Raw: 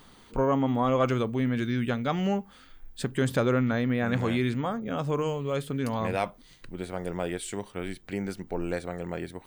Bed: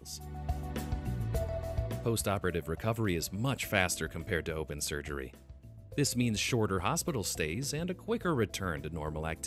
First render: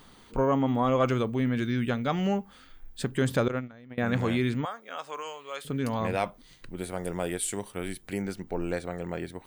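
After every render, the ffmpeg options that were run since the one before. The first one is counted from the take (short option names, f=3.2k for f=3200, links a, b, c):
-filter_complex "[0:a]asettb=1/sr,asplit=3[a][b][c];[a]atrim=end=3.484[d];[b]atrim=start=3.48:end=3.98,asetpts=PTS-STARTPTS,afade=t=in:d=0.004:c=qsin,afade=t=out:st=0.496:d=0.004:c=qsin,agate=range=-23dB:threshold=-23dB:ratio=16:release=100:detection=peak[e];[c]atrim=start=3.976[f];[d][e]acrossfade=d=0.004:c1=hsin:c2=qsin[g];[g][f]acrossfade=d=0.004:c1=qsin:c2=hsin,asettb=1/sr,asplit=3[h][i][j];[h]atrim=end=4.654[k];[i]atrim=start=4.65:end=5.65,asetpts=PTS-STARTPTS,afade=t=in:d=0.004:c=qsin,afade=t=out:st=0.996:d=0.004:c=qsin,highpass=910[l];[j]atrim=start=5.646[m];[k][l]acrossfade=d=0.004:c1=hsin:c2=qsin[n];[n][m]acrossfade=d=0.004:c1=qsin:c2=hsin,asettb=1/sr,asplit=3[o][p][q];[o]atrim=end=6.764[r];[p]atrim=start=6.76:end=8.22,asetpts=PTS-STARTPTS,afade=t=in:d=0.004:c=qsin,afade=t=out:st=1.456:d=0.004:c=qsin,equalizer=f=11k:t=o:w=0.89:g=12.5[s];[q]atrim=start=8.216[t];[r][s]acrossfade=d=0.004:c1=hsin:c2=qsin[u];[u][t]acrossfade=d=0.004:c1=qsin:c2=hsin"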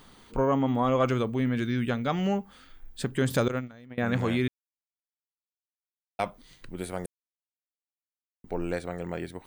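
-filter_complex "[0:a]asettb=1/sr,asplit=3[a][b][c];[a]atrim=end=3.304[d];[b]atrim=start=3.3:end=3.86,asetpts=PTS-STARTPTS,afade=t=in:d=0.004:c=qsin,afade=t=out:st=0.556:d=0.004:c=qsin,bass=f=250:g=1,treble=f=4k:g=8[e];[c]atrim=start=3.856[f];[d][e]acrossfade=d=0.004:c1=hsin:c2=qsin[g];[g][f]acrossfade=d=0.004:c1=qsin:c2=hsin,asplit=5[h][i][j][k][l];[h]atrim=end=4.48,asetpts=PTS-STARTPTS,afade=t=out:st=4.476:d=0.004:c=hsin[m];[i]atrim=start=4.48:end=6.19,asetpts=PTS-STARTPTS,volume=0[n];[j]atrim=start=6.19:end=7.06,asetpts=PTS-STARTPTS,afade=t=in:d=0.004:c=hsin,afade=t=out:st=0.866:d=0.004:c=hsin[o];[k]atrim=start=7.06:end=8.44,asetpts=PTS-STARTPTS,volume=0[p];[l]atrim=start=8.44,asetpts=PTS-STARTPTS,afade=t=in:d=0.004:c=hsin[q];[m][n][o][p][q]concat=n=5:v=0:a=1"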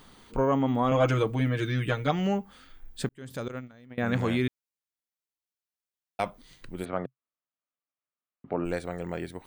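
-filter_complex "[0:a]asettb=1/sr,asplit=3[a][b][c];[a]atrim=end=0.914[d];[b]atrim=start=0.91:end=2.11,asetpts=PTS-STARTPTS,afade=t=in:d=0.004:c=qsin,afade=t=out:st=1.196:d=0.004:c=qsin,aecho=1:1:6.4:0.88,atrim=end_sample=52920[e];[c]atrim=start=2.106[f];[d][e]acrossfade=d=0.004:c1=hsin:c2=qsin[g];[g][f]acrossfade=d=0.004:c1=qsin:c2=hsin,asplit=3[h][i][j];[h]afade=t=out:st=6.84:d=0.02[k];[i]highpass=100,equalizer=f=130:t=q:w=4:g=8,equalizer=f=260:t=q:w=4:g=5,equalizer=f=620:t=q:w=4:g=6,equalizer=f=1.2k:t=q:w=4:g=10,lowpass=f=3.1k:w=0.5412,lowpass=f=3.1k:w=1.3066,afade=t=in:st=6.84:d=0.02,afade=t=out:st=8.64:d=0.02[l];[j]afade=t=in:st=8.64:d=0.02[m];[k][l][m]amix=inputs=3:normalize=0,asplit=2[n][o];[n]atrim=end=3.09,asetpts=PTS-STARTPTS,afade=t=out:st=3.086:d=0.004:c=hsin[p];[o]atrim=start=3.09,asetpts=PTS-STARTPTS,afade=t=in:d=1.01[q];[p][q]concat=n=2:v=0:a=1"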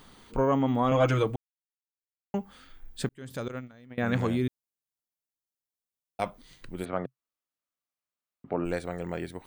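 -filter_complex "[0:a]asettb=1/sr,asplit=3[a][b][c];[a]atrim=end=4.274[d];[b]atrim=start=4.27:end=6.22,asetpts=PTS-STARTPTS,afade=t=in:d=0.004:c=qsin,afade=t=out:st=1.946:d=0.004:c=qsin,equalizer=f=2.1k:t=o:w=2.4:g=-9[e];[c]atrim=start=6.216[f];[d][e]acrossfade=d=0.004:c1=hsin:c2=qsin[g];[g][f]acrossfade=d=0.004:c1=qsin:c2=hsin,asplit=3[h][i][j];[h]atrim=end=1.36,asetpts=PTS-STARTPTS,afade=t=out:st=1.356:d=0.004:c=hsin[k];[i]atrim=start=1.36:end=2.34,asetpts=PTS-STARTPTS,volume=0[l];[j]atrim=start=2.34,asetpts=PTS-STARTPTS,afade=t=in:d=0.004:c=hsin[m];[k][l][m]concat=n=3:v=0:a=1"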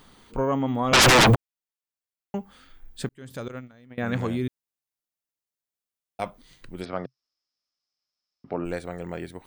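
-filter_complex "[0:a]asettb=1/sr,asplit=3[a][b][c];[a]atrim=end=0.934[d];[b]atrim=start=0.93:end=1.35,asetpts=PTS-STARTPTS,afade=t=in:d=0.004:c=qsin,afade=t=out:st=0.416:d=0.004:c=qsin,aeval=exprs='0.251*sin(PI/2*10*val(0)/0.251)':c=same[e];[c]atrim=start=1.346[f];[d][e]acrossfade=d=0.004:c1=hsin:c2=qsin[g];[g][f]acrossfade=d=0.004:c1=qsin:c2=hsin,asettb=1/sr,asplit=3[h][i][j];[h]atrim=end=6.814[k];[i]atrim=start=6.81:end=8.58,asetpts=PTS-STARTPTS,afade=t=in:d=0.004:c=qsin,afade=t=out:st=1.766:d=0.004:c=qsin,lowpass=f=5.2k:t=q:w=14[l];[j]atrim=start=8.576[m];[k][l]acrossfade=d=0.004:c1=hsin:c2=qsin[n];[n][m]acrossfade=d=0.004:c1=qsin:c2=hsin"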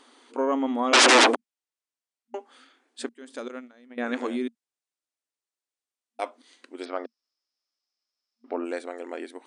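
-af "afftfilt=real='re*between(b*sr/4096,230,10000)':imag='im*between(b*sr/4096,230,10000)':win_size=4096:overlap=0.75"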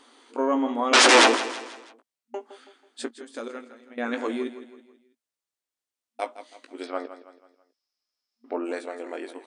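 -filter_complex "[0:a]asplit=2[a][b];[b]adelay=18,volume=-8dB[c];[a][c]amix=inputs=2:normalize=0,aecho=1:1:163|326|489|652:0.224|0.0963|0.0414|0.0178"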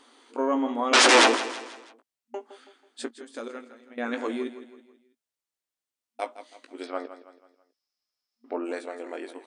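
-af "volume=-1.5dB"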